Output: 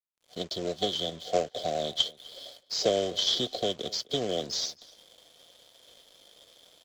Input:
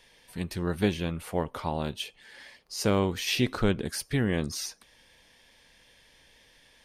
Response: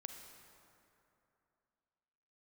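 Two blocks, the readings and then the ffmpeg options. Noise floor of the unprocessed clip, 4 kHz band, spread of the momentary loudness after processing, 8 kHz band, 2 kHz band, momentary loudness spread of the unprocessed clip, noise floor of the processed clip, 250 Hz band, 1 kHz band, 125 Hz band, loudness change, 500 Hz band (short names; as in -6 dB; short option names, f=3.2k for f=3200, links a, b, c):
-61 dBFS, +7.5 dB, 14 LU, 0.0 dB, -10.5 dB, 13 LU, -68 dBFS, -9.0 dB, 0.0 dB, -13.0 dB, 0.0 dB, +1.5 dB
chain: -filter_complex "[0:a]acrossover=split=180|520[a][b][c];[a]acompressor=threshold=-37dB:ratio=4[d];[b]acompressor=threshold=-40dB:ratio=4[e];[c]acompressor=threshold=-34dB:ratio=4[f];[d][e][f]amix=inputs=3:normalize=0,highpass=120,adynamicequalizer=threshold=0.00355:dfrequency=440:dqfactor=1:tfrequency=440:tqfactor=1:attack=5:release=100:ratio=0.375:range=4:mode=cutabove:tftype=bell,afftfilt=real='re*(1-between(b*sr/4096,760,3000))':imag='im*(1-between(b*sr/4096,760,3000))':win_size=4096:overlap=0.75,acrossover=split=450 4200:gain=0.1 1 0.112[g][h][i];[g][h][i]amix=inputs=3:normalize=0,dynaudnorm=f=230:g=3:m=16dB,aresample=16000,acrusher=bits=3:mode=log:mix=0:aa=0.000001,aresample=44100,aeval=exprs='sgn(val(0))*max(abs(val(0))-0.00237,0)':c=same,asplit=2[j][k];[k]adelay=256.6,volume=-21dB,highshelf=f=4k:g=-5.77[l];[j][l]amix=inputs=2:normalize=0"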